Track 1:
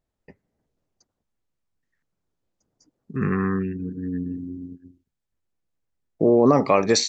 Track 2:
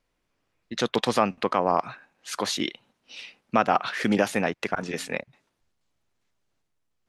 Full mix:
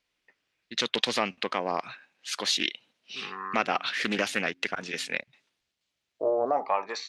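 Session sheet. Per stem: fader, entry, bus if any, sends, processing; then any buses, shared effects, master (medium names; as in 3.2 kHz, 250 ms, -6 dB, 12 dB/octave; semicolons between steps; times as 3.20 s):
+1.5 dB, 0.00 s, no send, wah-wah 0.29 Hz 590–1700 Hz, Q 5.5
-7.0 dB, 0.00 s, no send, bass shelf 63 Hz +10 dB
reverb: none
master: frequency weighting D; loudspeaker Doppler distortion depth 0.23 ms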